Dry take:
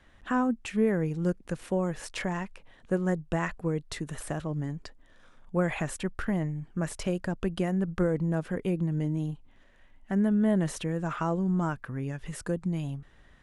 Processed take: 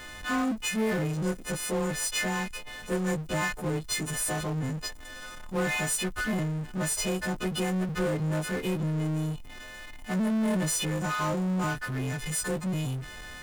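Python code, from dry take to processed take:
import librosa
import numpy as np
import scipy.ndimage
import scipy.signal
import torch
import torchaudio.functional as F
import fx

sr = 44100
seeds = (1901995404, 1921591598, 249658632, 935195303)

y = fx.freq_snap(x, sr, grid_st=3)
y = fx.power_curve(y, sr, exponent=0.5)
y = y * 10.0 ** (-6.0 / 20.0)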